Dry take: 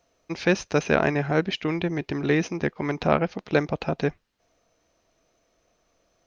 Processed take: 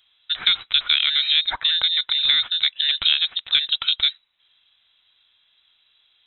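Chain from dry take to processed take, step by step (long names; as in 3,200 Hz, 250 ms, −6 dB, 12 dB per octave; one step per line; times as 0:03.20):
voice inversion scrambler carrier 3,900 Hz
tilt shelving filter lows −7.5 dB, about 770 Hz
downward compressor 4 to 1, threshold −15 dBFS, peak gain reduction 7 dB
low-shelf EQ 140 Hz +9.5 dB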